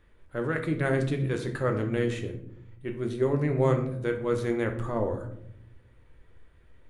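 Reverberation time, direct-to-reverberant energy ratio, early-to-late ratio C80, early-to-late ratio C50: 0.75 s, 4.0 dB, 13.5 dB, 9.5 dB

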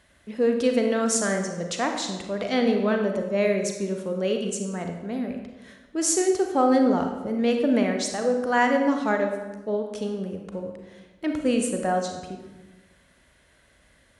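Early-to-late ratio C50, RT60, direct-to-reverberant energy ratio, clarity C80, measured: 5.5 dB, 1.2 s, 3.5 dB, 7.5 dB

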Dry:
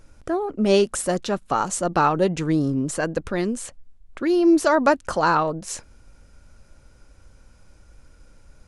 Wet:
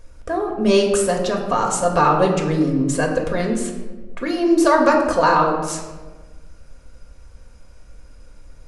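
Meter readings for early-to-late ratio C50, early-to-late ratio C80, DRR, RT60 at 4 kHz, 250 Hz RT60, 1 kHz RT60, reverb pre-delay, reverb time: 5.5 dB, 7.0 dB, 0.0 dB, 0.75 s, 1.6 s, 1.2 s, 3 ms, 1.3 s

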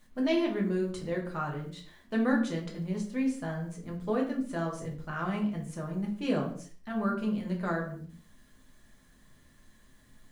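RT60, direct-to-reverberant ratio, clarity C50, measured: non-exponential decay, −2.0 dB, 8.0 dB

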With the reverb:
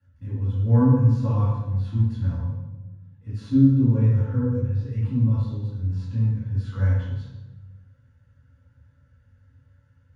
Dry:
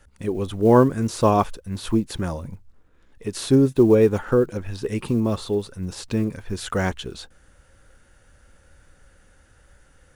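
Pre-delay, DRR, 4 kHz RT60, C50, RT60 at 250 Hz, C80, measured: 3 ms, −10.5 dB, 0.80 s, −1.0 dB, 1.5 s, 2.0 dB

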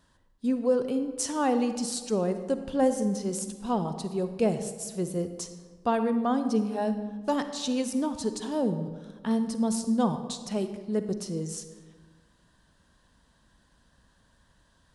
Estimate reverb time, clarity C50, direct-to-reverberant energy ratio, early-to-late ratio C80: 1.5 s, 9.5 dB, 9.0 dB, 11.0 dB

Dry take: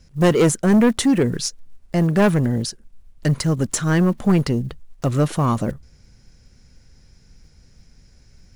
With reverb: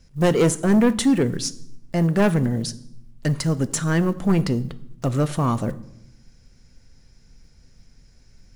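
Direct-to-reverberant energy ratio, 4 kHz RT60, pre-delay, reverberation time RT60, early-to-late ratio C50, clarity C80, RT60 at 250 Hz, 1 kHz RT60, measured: 12.0 dB, 0.60 s, 3 ms, 0.80 s, 18.0 dB, 21.0 dB, 1.1 s, 0.75 s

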